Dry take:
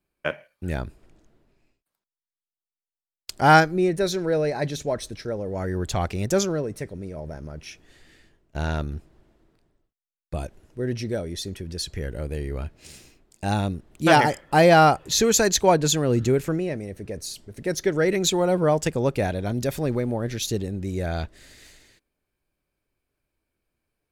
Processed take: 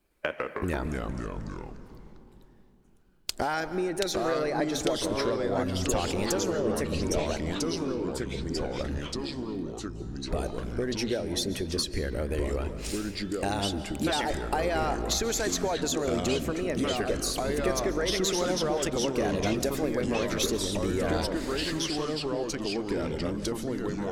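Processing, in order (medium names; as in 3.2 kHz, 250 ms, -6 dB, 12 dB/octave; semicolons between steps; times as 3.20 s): 5.64–5.92 s: time-frequency box 280–6400 Hz -28 dB; bass shelf 370 Hz +5 dB; harmonic-percussive split percussive +7 dB; peaking EQ 130 Hz -12.5 dB 1.2 oct; peak limiter -9 dBFS, peak gain reduction 11 dB; compression 6:1, threshold -30 dBFS, peak gain reduction 15.5 dB; 7.37–8.81 s: feedback comb 740 Hz, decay 0.18 s, harmonics all, mix 100%; algorithmic reverb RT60 2.2 s, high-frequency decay 0.35×, pre-delay 100 ms, DRR 11.5 dB; ever faster or slower copies 106 ms, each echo -3 st, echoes 3; trim +2.5 dB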